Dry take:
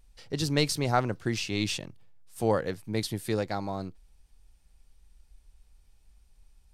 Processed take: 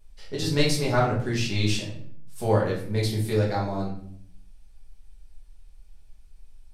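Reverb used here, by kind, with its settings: simulated room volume 93 m³, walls mixed, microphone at 1.4 m; trim -3 dB

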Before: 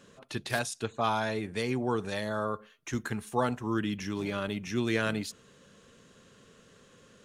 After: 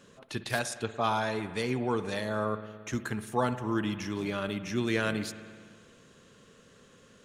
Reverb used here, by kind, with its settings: spring tank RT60 1.9 s, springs 56 ms, chirp 55 ms, DRR 11.5 dB

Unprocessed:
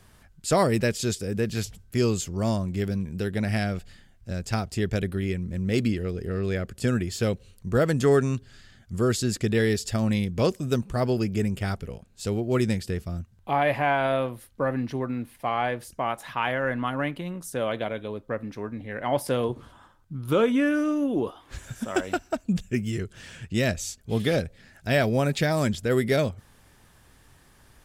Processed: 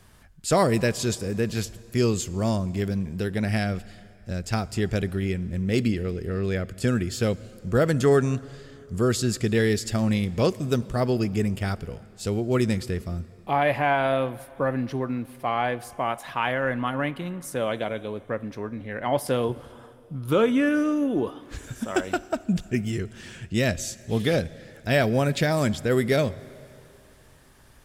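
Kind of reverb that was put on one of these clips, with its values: plate-style reverb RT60 3 s, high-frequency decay 0.85×, DRR 18.5 dB; trim +1 dB

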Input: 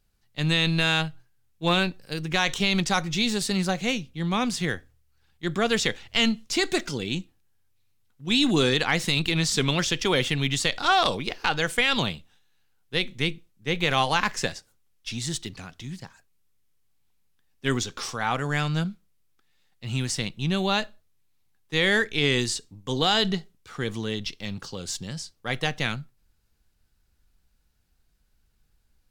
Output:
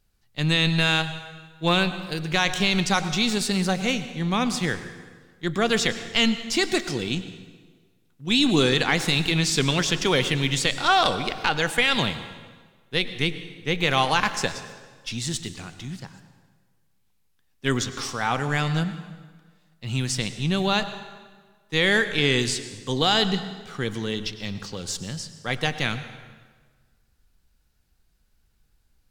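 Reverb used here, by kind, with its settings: plate-style reverb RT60 1.5 s, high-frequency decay 0.8×, pre-delay 85 ms, DRR 11.5 dB; trim +1.5 dB

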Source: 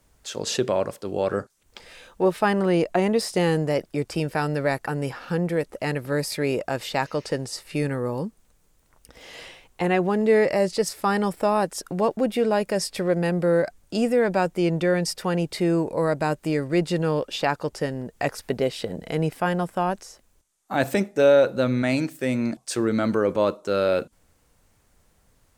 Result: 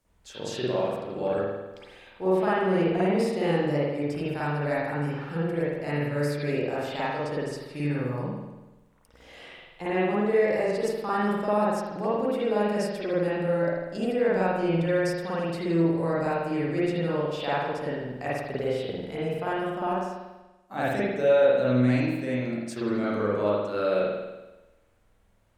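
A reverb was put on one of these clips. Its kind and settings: spring tank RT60 1.1 s, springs 48 ms, chirp 35 ms, DRR -9 dB; trim -12.5 dB

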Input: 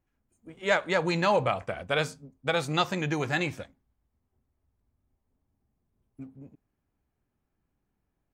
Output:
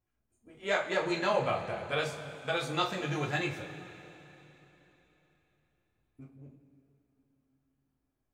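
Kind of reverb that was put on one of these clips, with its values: two-slope reverb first 0.26 s, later 3.6 s, from -18 dB, DRR -2 dB; trim -8 dB

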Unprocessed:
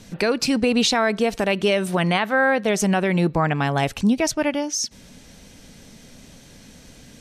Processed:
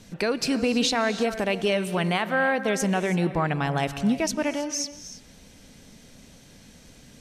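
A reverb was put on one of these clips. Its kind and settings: gated-style reverb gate 350 ms rising, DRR 11.5 dB; trim -4.5 dB

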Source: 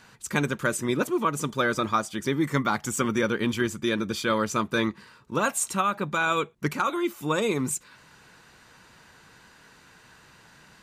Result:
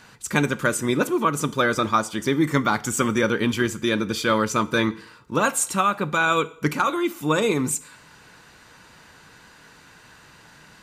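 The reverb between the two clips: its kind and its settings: FDN reverb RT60 0.6 s, low-frequency decay 0.75×, high-frequency decay 0.95×, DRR 14 dB; trim +4 dB

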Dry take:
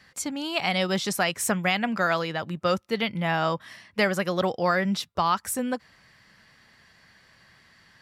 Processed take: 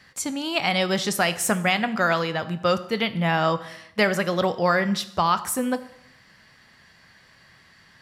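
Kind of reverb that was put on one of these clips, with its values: plate-style reverb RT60 0.77 s, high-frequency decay 0.85×, DRR 11.5 dB; trim +2.5 dB

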